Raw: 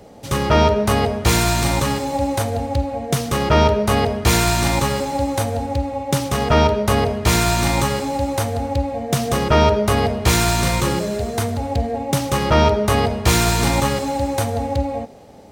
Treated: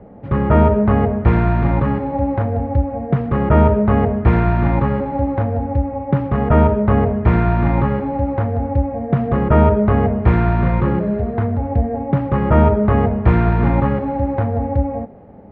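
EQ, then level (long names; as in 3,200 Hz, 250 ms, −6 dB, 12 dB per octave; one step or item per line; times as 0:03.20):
low-pass filter 1,900 Hz 24 dB per octave
parametric band 200 Hz +5 dB 0.23 octaves
low-shelf EQ 360 Hz +7 dB
−2.0 dB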